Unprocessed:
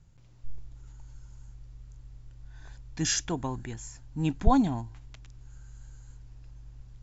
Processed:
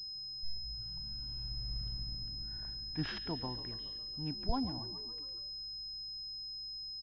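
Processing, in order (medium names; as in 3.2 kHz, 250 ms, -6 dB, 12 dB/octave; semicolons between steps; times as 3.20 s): Doppler pass-by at 1.79 s, 9 m/s, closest 2.7 m; frequency-shifting echo 139 ms, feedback 59%, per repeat +54 Hz, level -15 dB; class-D stage that switches slowly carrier 5.1 kHz; trim +6 dB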